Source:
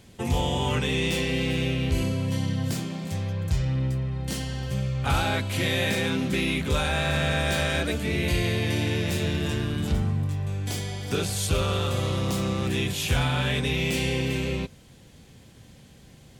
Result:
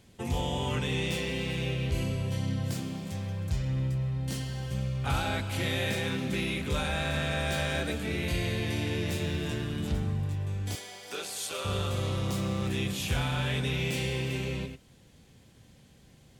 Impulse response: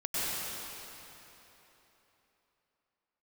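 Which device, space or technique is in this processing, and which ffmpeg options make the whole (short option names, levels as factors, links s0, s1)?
keyed gated reverb: -filter_complex "[0:a]asplit=3[s0][s1][s2];[1:a]atrim=start_sample=2205[s3];[s1][s3]afir=irnorm=-1:irlink=0[s4];[s2]apad=whole_len=722964[s5];[s4][s5]sidechaingate=range=0.0224:threshold=0.0112:ratio=16:detection=peak,volume=0.126[s6];[s0][s6]amix=inputs=2:normalize=0,asettb=1/sr,asplit=3[s7][s8][s9];[s7]atrim=end=10.754[s10];[s8]atrim=start=10.75:end=11.65,asetpts=PTS-STARTPTS,afade=t=in:d=0.004:c=qsin,afade=t=out:st=0.896:d=0.004:c=qsin,highpass=530[s11];[s9]atrim=start=11.646[s12];[s10][s11]acrossfade=d=0.004:c1=hsin:c2=qsin[s13];[s13][s12]acrossfade=d=0.004:c1=qsin:c2=hsin,volume=0.473"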